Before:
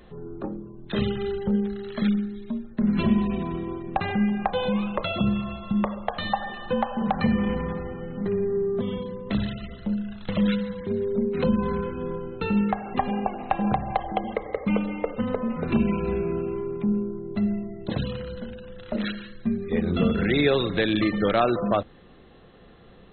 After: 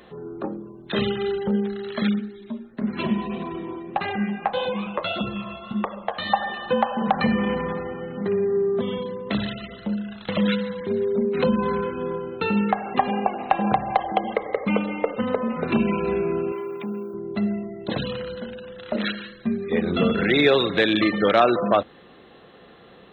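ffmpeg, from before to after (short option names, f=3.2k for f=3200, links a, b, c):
-filter_complex "[0:a]asplit=3[a][b][c];[a]afade=t=out:st=2.18:d=0.02[d];[b]flanger=delay=2.2:depth=10:regen=-33:speed=1.7:shape=sinusoidal,afade=t=in:st=2.18:d=0.02,afade=t=out:st=6.28:d=0.02[e];[c]afade=t=in:st=6.28:d=0.02[f];[d][e][f]amix=inputs=3:normalize=0,asettb=1/sr,asplit=3[g][h][i];[g]atrim=end=16.524[j];[h]atrim=start=16.52:end=17.14,asetpts=PTS-STARTPTS,afade=t=in:d=0.004:c=qsin,afade=t=out:st=0.616:d=0.004:c=qsin,aemphasis=mode=production:type=riaa[k];[i]atrim=start=17.136[l];[j][k]acrossfade=d=0.004:c1=hsin:c2=qsin[m];[m][l]acrossfade=d=0.004:c1=qsin:c2=hsin,highpass=f=330:p=1,acontrast=48"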